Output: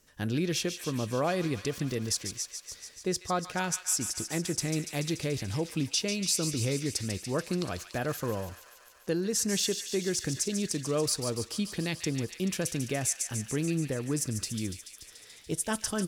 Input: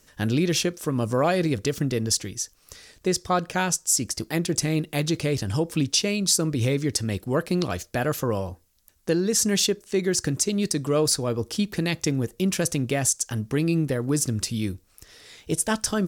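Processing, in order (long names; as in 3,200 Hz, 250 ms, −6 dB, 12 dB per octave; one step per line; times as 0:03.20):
delay with a high-pass on its return 144 ms, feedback 75%, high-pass 1,700 Hz, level −8 dB
level −7 dB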